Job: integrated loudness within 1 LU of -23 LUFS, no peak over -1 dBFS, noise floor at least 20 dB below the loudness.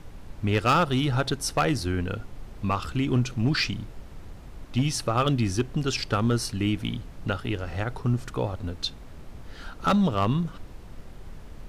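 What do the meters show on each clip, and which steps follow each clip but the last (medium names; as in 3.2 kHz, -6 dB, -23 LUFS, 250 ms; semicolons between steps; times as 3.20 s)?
clipped samples 0.6%; clipping level -16.0 dBFS; noise floor -44 dBFS; noise floor target -47 dBFS; loudness -26.5 LUFS; peak level -16.0 dBFS; loudness target -23.0 LUFS
-> clip repair -16 dBFS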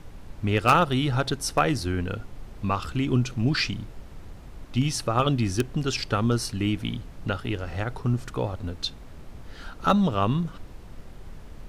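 clipped samples 0.0%; noise floor -44 dBFS; noise floor target -46 dBFS
-> noise print and reduce 6 dB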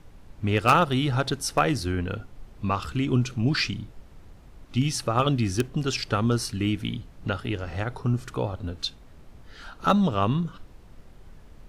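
noise floor -49 dBFS; loudness -26.0 LUFS; peak level -7.0 dBFS; loudness target -23.0 LUFS
-> trim +3 dB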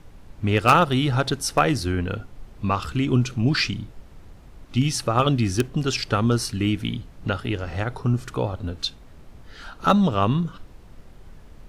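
loudness -23.0 LUFS; peak level -4.0 dBFS; noise floor -46 dBFS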